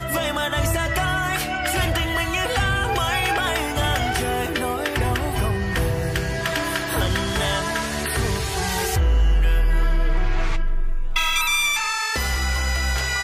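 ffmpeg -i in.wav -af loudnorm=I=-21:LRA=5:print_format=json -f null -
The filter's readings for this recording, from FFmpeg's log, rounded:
"input_i" : "-22.2",
"input_tp" : "-9.4",
"input_lra" : "1.4",
"input_thresh" : "-32.2",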